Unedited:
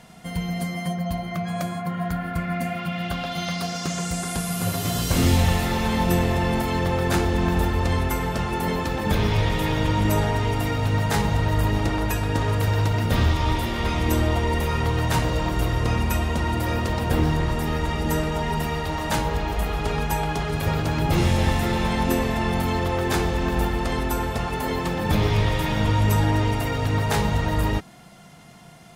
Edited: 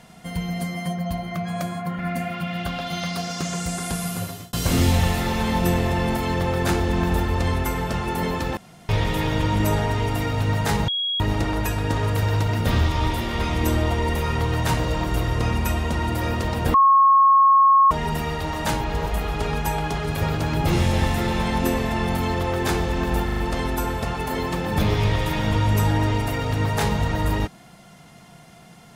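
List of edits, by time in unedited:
1.99–2.44 s: delete
4.49–4.98 s: fade out linear
9.02–9.34 s: room tone
11.33–11.65 s: bleep 3.31 kHz -21.5 dBFS
17.19–18.36 s: bleep 1.09 kHz -11 dBFS
19.26–19.51 s: reverse
23.70 s: stutter 0.04 s, 4 plays

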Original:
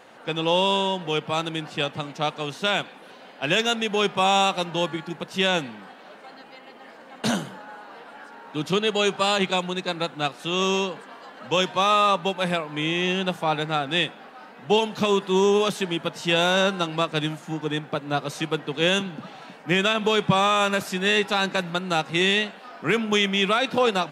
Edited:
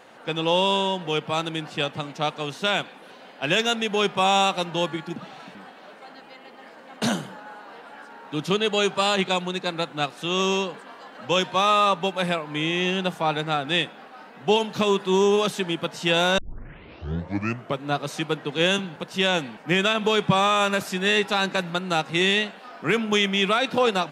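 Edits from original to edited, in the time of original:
5.16–5.77 s: swap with 19.18–19.57 s
16.60 s: tape start 1.48 s

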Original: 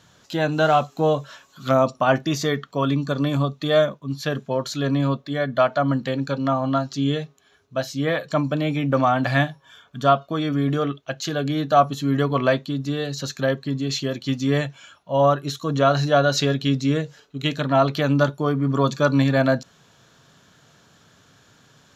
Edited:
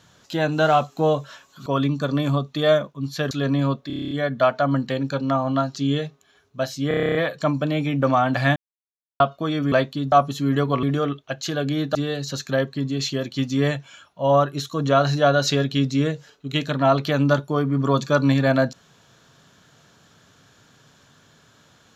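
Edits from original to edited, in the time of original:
1.66–2.73 s: delete
4.38–4.72 s: delete
5.28 s: stutter 0.03 s, 9 plays
8.05 s: stutter 0.03 s, 10 plays
9.46–10.10 s: mute
10.62–11.74 s: swap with 12.45–12.85 s

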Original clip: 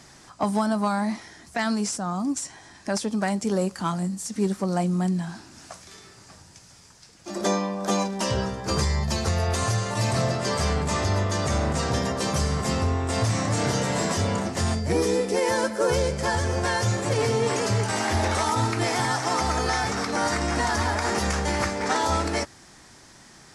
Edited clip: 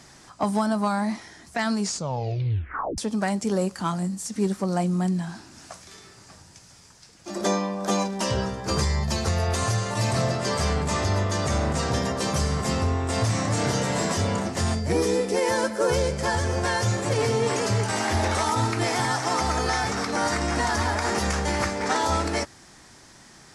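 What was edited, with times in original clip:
1.80 s: tape stop 1.18 s

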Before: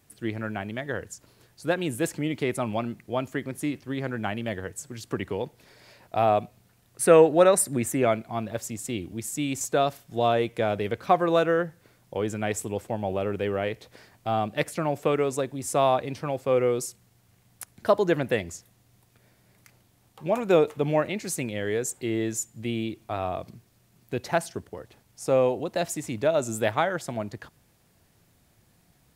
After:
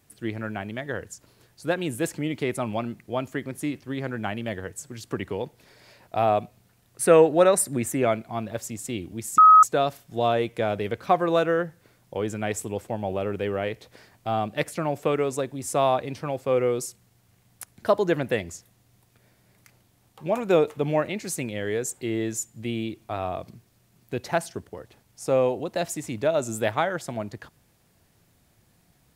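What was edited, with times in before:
9.38–9.63 s: bleep 1.27 kHz -8.5 dBFS

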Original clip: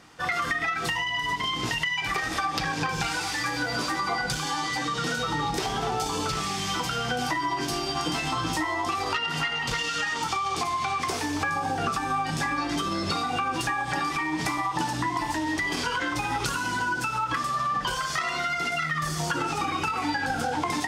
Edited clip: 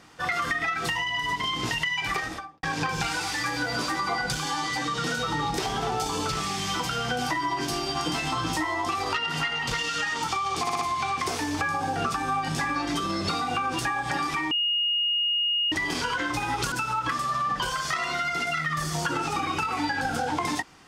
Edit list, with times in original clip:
2.13–2.63 s: studio fade out
10.61 s: stutter 0.06 s, 4 plays
14.33–15.54 s: bleep 2.86 kHz -22 dBFS
16.54–16.97 s: delete

